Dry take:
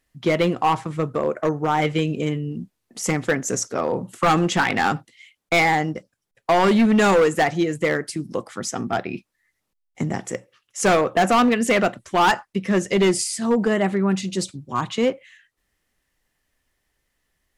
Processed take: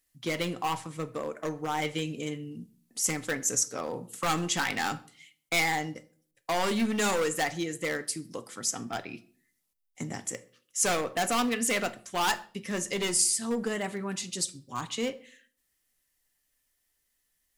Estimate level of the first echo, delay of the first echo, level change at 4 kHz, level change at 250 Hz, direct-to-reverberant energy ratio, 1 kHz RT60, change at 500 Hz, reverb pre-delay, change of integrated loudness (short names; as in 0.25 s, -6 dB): none, none, -4.0 dB, -12.0 dB, 9.0 dB, 0.45 s, -12.0 dB, 4 ms, -8.5 dB